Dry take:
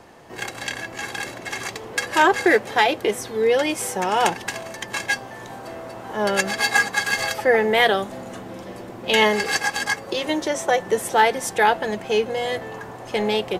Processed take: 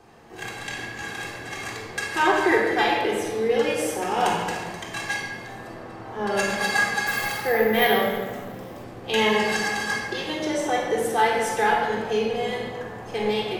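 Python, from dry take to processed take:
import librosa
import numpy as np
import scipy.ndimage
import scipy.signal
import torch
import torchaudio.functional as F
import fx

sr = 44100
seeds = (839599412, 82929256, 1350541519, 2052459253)

y = fx.high_shelf(x, sr, hz=7000.0, db=-9.0, at=(5.67, 6.35))
y = fx.room_shoebox(y, sr, seeds[0], volume_m3=1800.0, walls='mixed', distance_m=3.7)
y = fx.resample_bad(y, sr, factor=3, down='none', up='hold', at=(7.07, 8.84))
y = F.gain(torch.from_numpy(y), -9.0).numpy()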